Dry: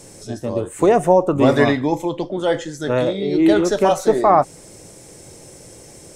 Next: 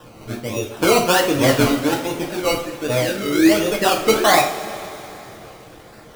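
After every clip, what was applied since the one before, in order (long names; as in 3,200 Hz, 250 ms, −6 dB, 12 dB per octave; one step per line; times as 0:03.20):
sample-and-hold swept by an LFO 20×, swing 60% 1.3 Hz
reverb reduction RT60 0.65 s
coupled-rooms reverb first 0.4 s, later 3.5 s, from −17 dB, DRR −1.5 dB
level −3.5 dB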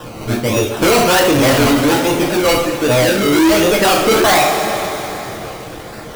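in parallel at −0.5 dB: brickwall limiter −10.5 dBFS, peak gain reduction 9 dB
on the sum: soft clipping −15 dBFS, distortion −8 dB
level +6.5 dB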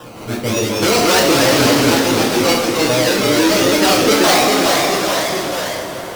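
low-shelf EQ 77 Hz −10.5 dB
delay with pitch and tempo change per echo 160 ms, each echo −1 semitone, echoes 3
dynamic equaliser 5,100 Hz, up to +6 dB, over −31 dBFS, Q 1.3
level −3.5 dB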